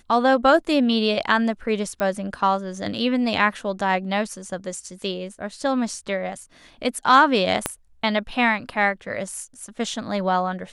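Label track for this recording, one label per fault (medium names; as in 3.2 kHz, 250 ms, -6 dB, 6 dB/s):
2.000000	2.000000	pop -14 dBFS
7.660000	7.660000	pop -6 dBFS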